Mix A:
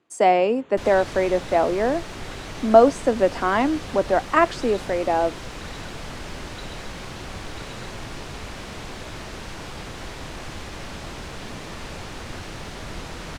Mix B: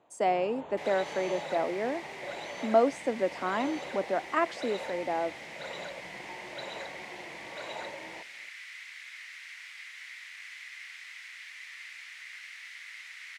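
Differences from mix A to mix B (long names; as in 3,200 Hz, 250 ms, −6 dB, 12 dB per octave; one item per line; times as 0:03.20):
speech −10.0 dB
first sound: add flat-topped bell 700 Hz +12.5 dB 1.2 octaves
second sound: add four-pole ladder high-pass 1,900 Hz, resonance 75%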